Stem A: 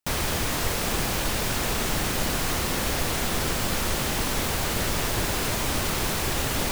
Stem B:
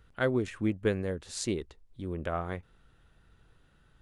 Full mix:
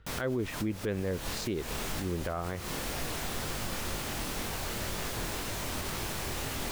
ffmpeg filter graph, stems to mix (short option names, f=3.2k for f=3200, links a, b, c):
-filter_complex "[0:a]flanger=delay=19:depth=7.9:speed=2,volume=-6dB[a];[1:a]lowpass=4.7k,volume=2.5dB,asplit=2[b][c];[c]apad=whole_len=296254[d];[a][d]sidechaincompress=threshold=-37dB:ratio=8:attack=7.4:release=167[e];[e][b]amix=inputs=2:normalize=0,alimiter=limit=-23.5dB:level=0:latency=1:release=63"